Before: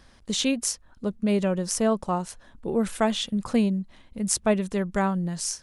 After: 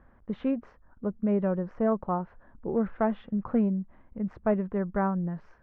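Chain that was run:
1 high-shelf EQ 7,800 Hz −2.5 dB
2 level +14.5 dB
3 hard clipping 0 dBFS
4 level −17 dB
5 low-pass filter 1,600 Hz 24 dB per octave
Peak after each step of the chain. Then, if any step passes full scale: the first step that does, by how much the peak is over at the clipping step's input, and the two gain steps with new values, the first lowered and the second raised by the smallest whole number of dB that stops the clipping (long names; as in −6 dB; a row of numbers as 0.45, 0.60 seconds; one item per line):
−5.0, +9.5, 0.0, −17.0, −16.5 dBFS
step 2, 9.5 dB
step 2 +4.5 dB, step 4 −7 dB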